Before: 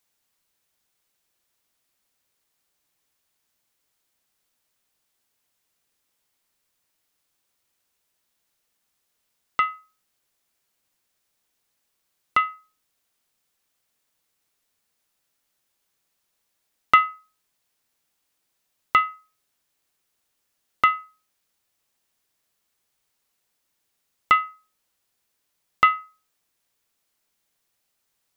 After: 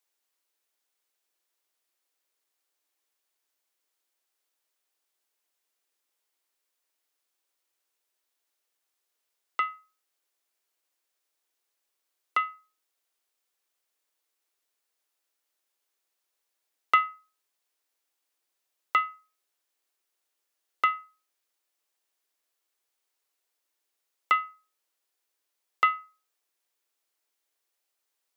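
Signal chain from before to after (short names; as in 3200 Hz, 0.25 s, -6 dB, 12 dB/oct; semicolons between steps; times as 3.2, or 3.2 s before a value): steep high-pass 300 Hz 36 dB/oct; gain -6 dB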